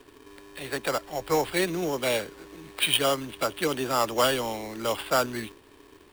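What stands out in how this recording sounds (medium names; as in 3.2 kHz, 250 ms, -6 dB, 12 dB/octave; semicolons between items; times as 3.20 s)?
aliases and images of a low sample rate 6.2 kHz, jitter 0%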